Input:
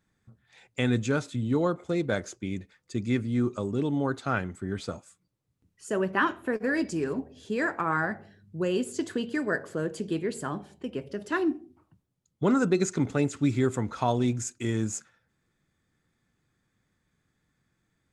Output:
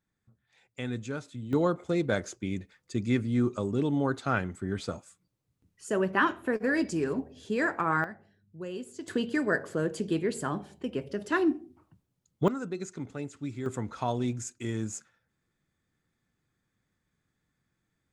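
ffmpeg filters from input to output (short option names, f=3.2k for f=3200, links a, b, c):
-af "asetnsamples=n=441:p=0,asendcmd='1.53 volume volume 0dB;8.04 volume volume -10.5dB;9.08 volume volume 1dB;12.48 volume volume -11.5dB;13.66 volume volume -4.5dB',volume=-9dB"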